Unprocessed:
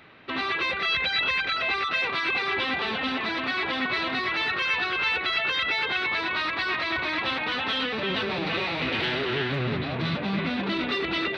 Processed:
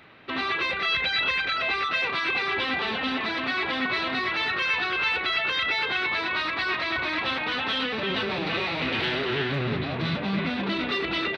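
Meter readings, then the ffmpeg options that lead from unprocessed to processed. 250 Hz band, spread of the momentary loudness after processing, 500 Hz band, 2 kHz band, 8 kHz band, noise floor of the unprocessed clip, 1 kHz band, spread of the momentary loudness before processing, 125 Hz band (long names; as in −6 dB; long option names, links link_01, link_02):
0.0 dB, 4 LU, 0.0 dB, +0.5 dB, can't be measured, −31 dBFS, 0.0 dB, 4 LU, 0.0 dB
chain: -filter_complex "[0:a]asplit=2[link_01][link_02];[link_02]adelay=35,volume=-13.5dB[link_03];[link_01][link_03]amix=inputs=2:normalize=0"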